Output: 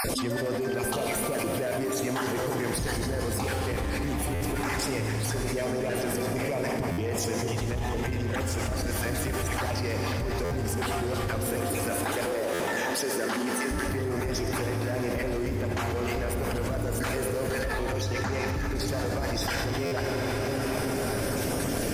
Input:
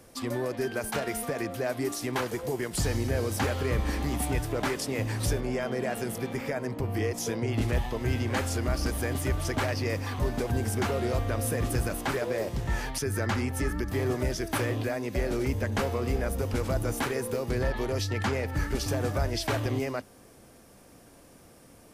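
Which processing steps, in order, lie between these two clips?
random spectral dropouts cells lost 29%; soft clip -24 dBFS, distortion -16 dB; 11.47–13.71 HPF 210 Hz 24 dB/oct; reverb RT60 4.4 s, pre-delay 49 ms, DRR 3 dB; stuck buffer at 4.34/6.91/10.44/12.53/19.85, samples 512, times 5; fast leveller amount 100%; gain -4 dB

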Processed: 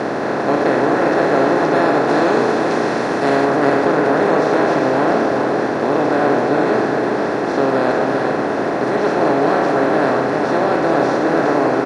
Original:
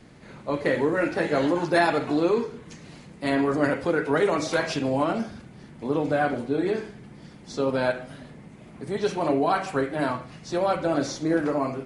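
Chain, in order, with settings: per-bin compression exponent 0.2; high shelf 2700 Hz -8.5 dB, from 2.08 s -3.5 dB, from 3.45 s -9.5 dB; HPF 88 Hz; high shelf 7800 Hz -5 dB; echo 0.398 s -5.5 dB; gain -1 dB

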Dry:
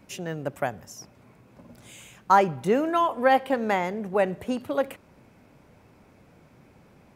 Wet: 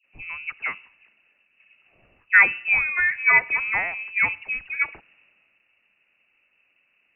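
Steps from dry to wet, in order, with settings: dispersion highs, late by 46 ms, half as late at 750 Hz; inverted band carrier 2800 Hz; three-band expander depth 40%

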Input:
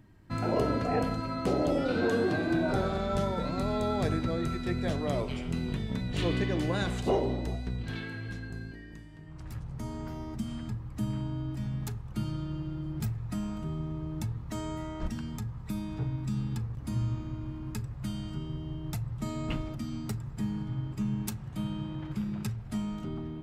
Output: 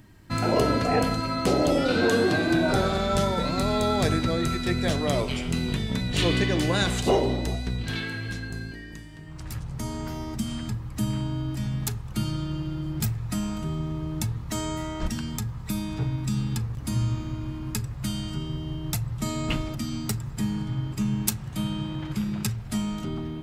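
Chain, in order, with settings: high shelf 2400 Hz +9.5 dB; gain +5 dB

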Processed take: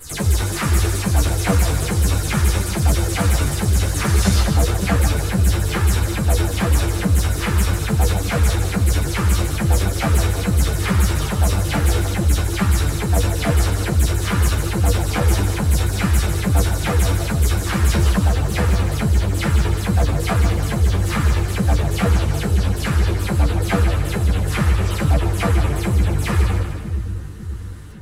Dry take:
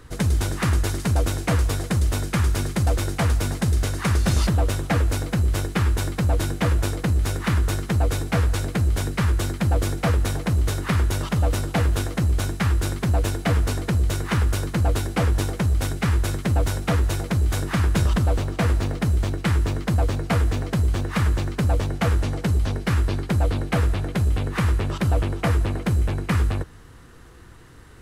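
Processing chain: spectral delay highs early, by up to 0.107 s; high shelf 5200 Hz +6 dB; on a send: split-band echo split 350 Hz, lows 0.55 s, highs 0.15 s, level -7 dB; on the sum: ensemble effect; gain +6 dB

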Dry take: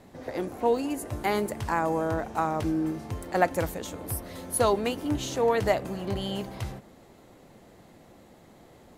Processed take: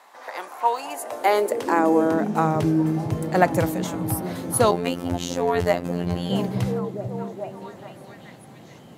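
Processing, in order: delay with a stepping band-pass 0.43 s, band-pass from 160 Hz, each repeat 0.7 oct, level -4 dB; high-pass sweep 1000 Hz -> 130 Hz, 0.7–2.75; 4.71–6.3 robotiser 87.4 Hz; gain +4.5 dB

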